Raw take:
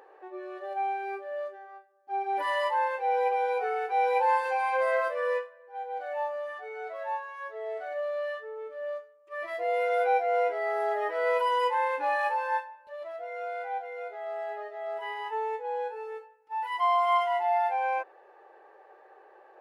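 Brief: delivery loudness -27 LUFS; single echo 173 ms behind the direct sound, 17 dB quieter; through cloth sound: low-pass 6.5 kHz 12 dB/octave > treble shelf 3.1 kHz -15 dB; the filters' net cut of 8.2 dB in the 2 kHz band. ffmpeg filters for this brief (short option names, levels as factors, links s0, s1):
-af "lowpass=6500,equalizer=f=2000:t=o:g=-5.5,highshelf=f=3100:g=-15,aecho=1:1:173:0.141,volume=1.68"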